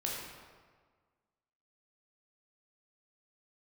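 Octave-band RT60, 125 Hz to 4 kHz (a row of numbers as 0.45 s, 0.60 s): 1.6 s, 1.6 s, 1.6 s, 1.6 s, 1.3 s, 1.0 s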